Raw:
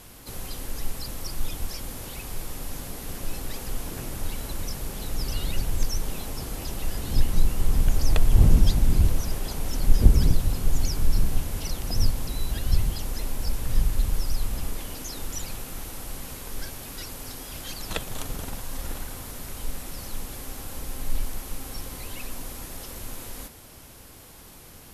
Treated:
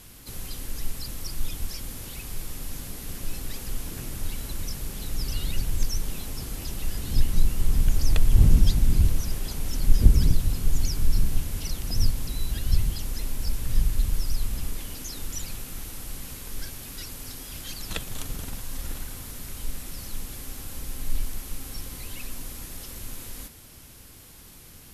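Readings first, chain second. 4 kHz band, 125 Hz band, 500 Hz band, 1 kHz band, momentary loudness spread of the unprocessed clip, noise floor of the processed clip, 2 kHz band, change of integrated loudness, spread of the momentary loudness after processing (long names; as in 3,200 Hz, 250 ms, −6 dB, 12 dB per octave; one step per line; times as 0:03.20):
−0.5 dB, −0.5 dB, −5.0 dB, −5.5 dB, 14 LU, −47 dBFS, −2.0 dB, −0.5 dB, 14 LU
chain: parametric band 700 Hz −7 dB 2 octaves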